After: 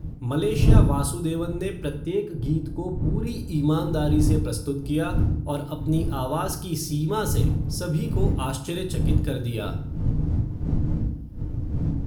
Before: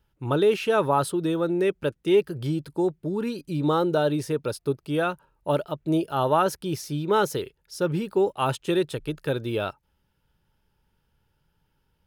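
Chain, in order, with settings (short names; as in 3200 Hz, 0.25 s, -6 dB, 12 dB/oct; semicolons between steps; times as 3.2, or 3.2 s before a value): wind noise 160 Hz -26 dBFS; 1.95–3.27 high shelf 2400 Hz -11.5 dB; in parallel at -2 dB: compressor, threshold -27 dBFS, peak gain reduction 19 dB; on the sum: tone controls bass +8 dB, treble +12 dB; FDN reverb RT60 0.6 s, low-frequency decay 1.5×, high-frequency decay 0.75×, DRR 3 dB; gain -10.5 dB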